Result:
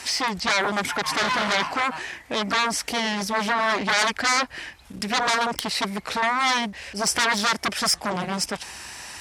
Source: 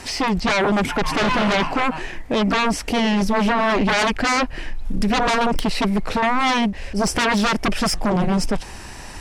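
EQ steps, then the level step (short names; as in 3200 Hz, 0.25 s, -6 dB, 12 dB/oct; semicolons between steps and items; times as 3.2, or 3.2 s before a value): HPF 57 Hz 24 dB/oct; tilt shelf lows -7.5 dB, about 770 Hz; dynamic EQ 2700 Hz, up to -7 dB, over -34 dBFS, Q 3.5; -4.5 dB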